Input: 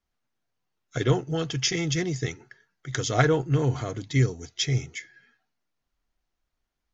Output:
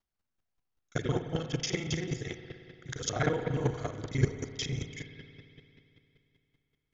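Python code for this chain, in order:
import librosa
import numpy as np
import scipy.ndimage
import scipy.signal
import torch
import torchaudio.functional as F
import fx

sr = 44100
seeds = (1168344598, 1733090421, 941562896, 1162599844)

y = fx.local_reverse(x, sr, ms=34.0)
y = fx.rev_spring(y, sr, rt60_s=2.9, pass_ms=(57,), chirp_ms=35, drr_db=6.5)
y = fx.chopper(y, sr, hz=5.2, depth_pct=65, duty_pct=10)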